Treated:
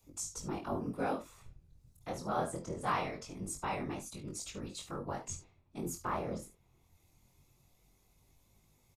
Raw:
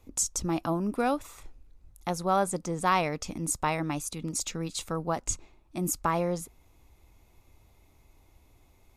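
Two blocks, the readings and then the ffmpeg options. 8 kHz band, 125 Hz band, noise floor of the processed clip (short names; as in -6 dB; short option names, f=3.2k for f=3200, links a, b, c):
-11.5 dB, -9.0 dB, -70 dBFS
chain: -filter_complex "[0:a]highshelf=f=7.7k:g=-4.5,acrossover=split=120|630|4400[a][b][c][d];[d]acompressor=mode=upward:threshold=-56dB:ratio=2.5[e];[a][b][c][e]amix=inputs=4:normalize=0,aecho=1:1:50|72:0.266|0.158,afftfilt=real='hypot(re,im)*cos(2*PI*random(0))':imag='hypot(re,im)*sin(2*PI*random(1))':win_size=512:overlap=0.75,flanger=delay=20:depth=4:speed=0.23"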